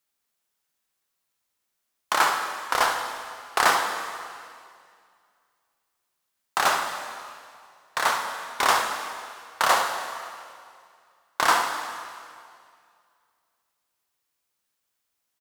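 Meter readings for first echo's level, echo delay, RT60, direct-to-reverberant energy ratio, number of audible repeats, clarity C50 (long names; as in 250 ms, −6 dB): −10.0 dB, 71 ms, 2.2 s, 3.0 dB, 1, 4.0 dB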